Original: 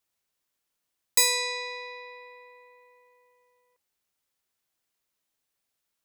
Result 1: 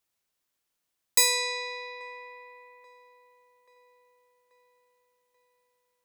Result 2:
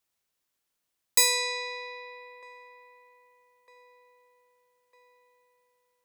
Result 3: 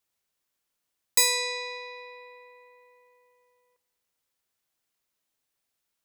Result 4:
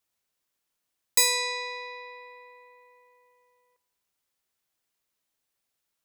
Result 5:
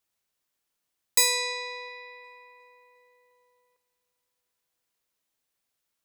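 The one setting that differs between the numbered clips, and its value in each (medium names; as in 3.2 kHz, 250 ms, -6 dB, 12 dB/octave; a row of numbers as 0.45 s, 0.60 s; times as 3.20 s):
feedback echo behind a band-pass, time: 834 ms, 1253 ms, 201 ms, 88 ms, 356 ms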